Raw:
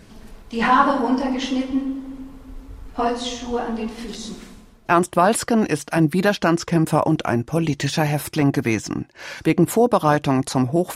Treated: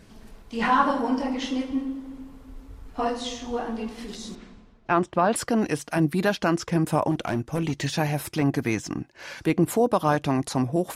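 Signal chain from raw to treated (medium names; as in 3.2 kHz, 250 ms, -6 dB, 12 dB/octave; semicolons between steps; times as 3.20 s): 4.35–5.36 s: distance through air 140 m; 7.11–7.74 s: hard clipper -15 dBFS, distortion -25 dB; trim -5 dB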